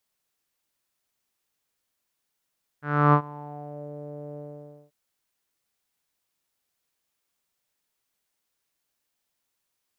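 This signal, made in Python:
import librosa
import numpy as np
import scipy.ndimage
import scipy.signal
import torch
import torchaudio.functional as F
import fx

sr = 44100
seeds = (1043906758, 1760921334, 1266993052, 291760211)

y = fx.sub_voice(sr, note=50, wave='saw', cutoff_hz=550.0, q=5.5, env_oct=1.5, env_s=1.06, attack_ms=313.0, decay_s=0.08, sustain_db=-23.5, release_s=0.54, note_s=1.55, slope=12)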